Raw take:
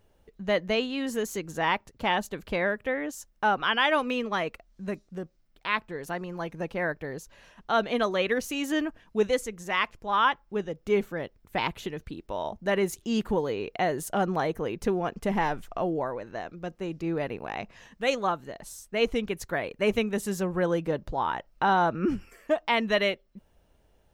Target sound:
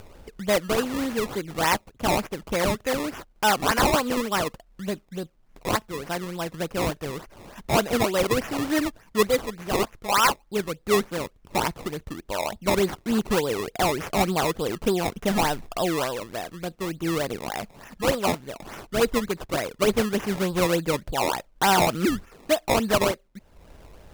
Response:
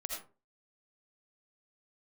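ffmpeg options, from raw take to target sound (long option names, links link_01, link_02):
-af "acrusher=samples=20:mix=1:aa=0.000001:lfo=1:lforange=20:lforate=3.4,acompressor=mode=upward:threshold=-37dB:ratio=2.5,volume=3.5dB"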